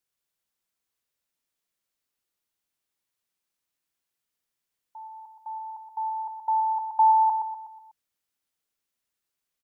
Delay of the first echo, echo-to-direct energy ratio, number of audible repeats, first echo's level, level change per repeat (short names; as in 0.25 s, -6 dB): 0.123 s, -5.5 dB, 5, -6.5 dB, -7.0 dB